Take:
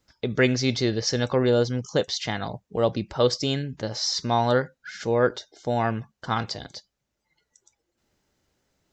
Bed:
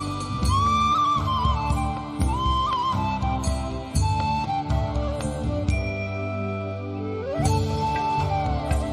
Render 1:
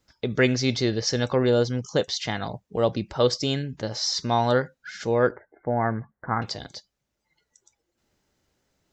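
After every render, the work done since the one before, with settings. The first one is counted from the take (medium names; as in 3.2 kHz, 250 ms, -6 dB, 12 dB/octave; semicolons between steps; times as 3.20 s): 5.31–6.42 s: steep low-pass 2.1 kHz 96 dB/octave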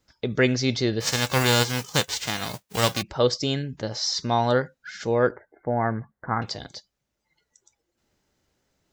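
1.00–3.01 s: formants flattened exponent 0.3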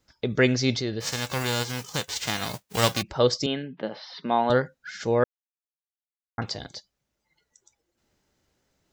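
0.79–2.16 s: compression 1.5:1, threshold -34 dBFS; 3.46–4.50 s: elliptic band-pass 180–3200 Hz; 5.24–6.38 s: mute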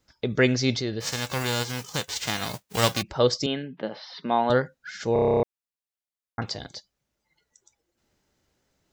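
5.13 s: stutter in place 0.03 s, 10 plays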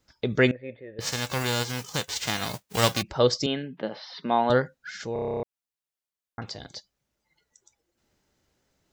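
0.51–0.99 s: cascade formant filter e; 5.01–6.76 s: compression 1.5:1, threshold -41 dBFS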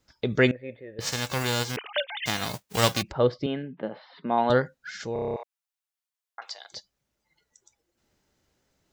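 1.76–2.26 s: formants replaced by sine waves; 3.12–4.38 s: distance through air 440 m; 5.36–6.72 s: high-pass 700 Hz 24 dB/octave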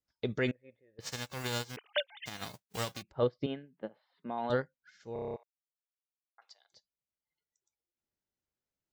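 peak limiter -17.5 dBFS, peak gain reduction 11 dB; upward expansion 2.5:1, over -39 dBFS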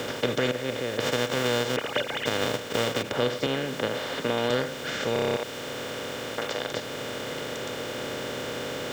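spectral levelling over time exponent 0.2; three bands compressed up and down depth 40%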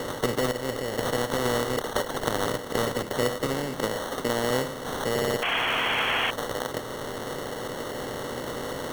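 sample-and-hold 18×; 5.42–6.31 s: painted sound noise 620–3400 Hz -26 dBFS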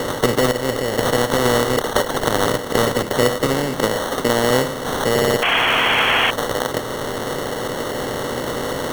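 trim +9 dB; peak limiter -1 dBFS, peak gain reduction 2.5 dB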